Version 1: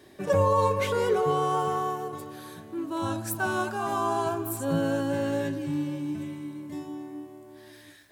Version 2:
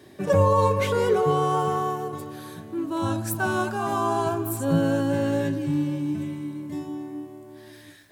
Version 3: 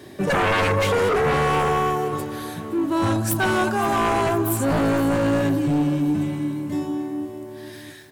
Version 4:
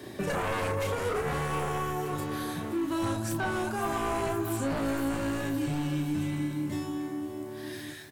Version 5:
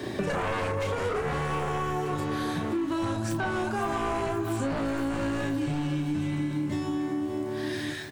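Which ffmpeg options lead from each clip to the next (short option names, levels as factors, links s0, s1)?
-af "highpass=110,lowshelf=f=150:g=11.5,volume=1.26"
-af "aeval=exprs='0.398*sin(PI/2*3.98*val(0)/0.398)':c=same,aecho=1:1:519|1038|1557|2076:0.141|0.0692|0.0339|0.0166,volume=0.376"
-filter_complex "[0:a]acrossover=split=86|1400|6900[s0][s1][s2][s3];[s0]acompressor=threshold=0.01:ratio=4[s4];[s1]acompressor=threshold=0.0316:ratio=4[s5];[s2]acompressor=threshold=0.00891:ratio=4[s6];[s3]acompressor=threshold=0.00501:ratio=4[s7];[s4][s5][s6][s7]amix=inputs=4:normalize=0,asplit=2[s8][s9];[s9]adelay=33,volume=0.531[s10];[s8][s10]amix=inputs=2:normalize=0,volume=0.841"
-af "equalizer=f=13000:w=0.91:g=-14.5,acompressor=threshold=0.0158:ratio=4,volume=2.82"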